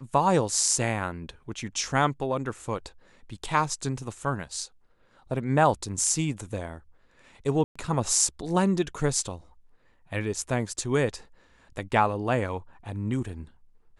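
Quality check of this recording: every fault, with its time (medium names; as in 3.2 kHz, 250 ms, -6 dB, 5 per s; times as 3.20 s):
7.64–7.75 s: dropout 115 ms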